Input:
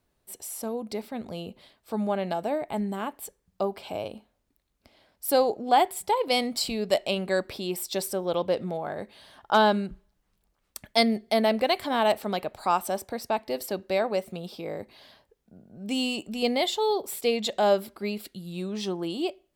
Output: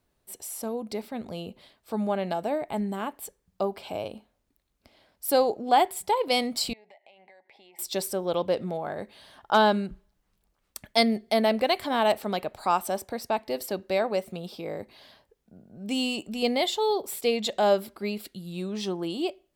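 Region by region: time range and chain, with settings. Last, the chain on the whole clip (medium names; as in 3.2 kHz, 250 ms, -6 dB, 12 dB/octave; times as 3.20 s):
6.73–7.79 s: two resonant band-passes 1.3 kHz, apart 1.3 oct + compression 16:1, threshold -50 dBFS
whole clip: none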